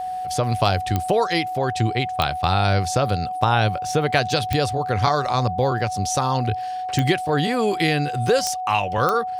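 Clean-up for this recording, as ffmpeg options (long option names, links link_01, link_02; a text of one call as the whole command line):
ffmpeg -i in.wav -af "adeclick=threshold=4,bandreject=frequency=740:width=30" out.wav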